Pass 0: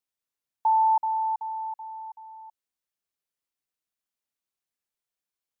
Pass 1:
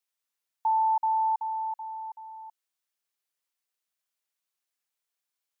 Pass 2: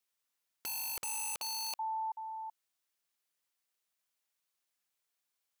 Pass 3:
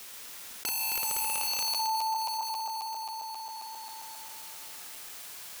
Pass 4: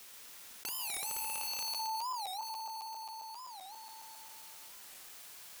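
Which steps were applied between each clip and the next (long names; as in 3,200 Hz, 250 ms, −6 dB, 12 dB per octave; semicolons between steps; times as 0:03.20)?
high-pass filter 750 Hz 6 dB per octave; brickwall limiter −24 dBFS, peak gain reduction 4.5 dB; level +3.5 dB
wrap-around overflow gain 33.5 dB; level +1 dB
feedback delay that plays each chunk backwards 134 ms, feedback 70%, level 0 dB; envelope flattener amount 70%
wow of a warped record 45 rpm, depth 250 cents; level −7.5 dB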